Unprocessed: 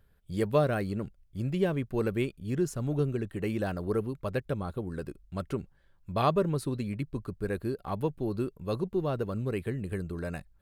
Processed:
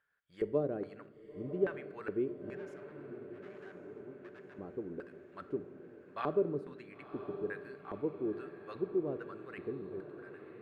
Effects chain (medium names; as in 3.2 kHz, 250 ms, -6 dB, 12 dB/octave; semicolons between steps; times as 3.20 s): fade out at the end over 1.02 s; 2.56–4.57 s: valve stage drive 44 dB, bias 0.7; LFO band-pass square 1.2 Hz 360–1600 Hz; echo that smears into a reverb 1014 ms, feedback 66%, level -12 dB; simulated room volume 660 m³, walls mixed, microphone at 0.34 m; trim -1 dB